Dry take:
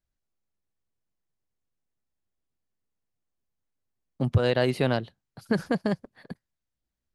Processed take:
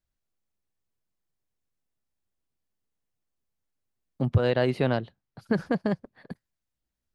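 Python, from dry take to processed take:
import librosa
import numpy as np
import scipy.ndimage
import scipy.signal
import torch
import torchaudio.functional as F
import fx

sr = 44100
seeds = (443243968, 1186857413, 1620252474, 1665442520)

y = fx.lowpass(x, sr, hz=2800.0, slope=6, at=(4.21, 6.31))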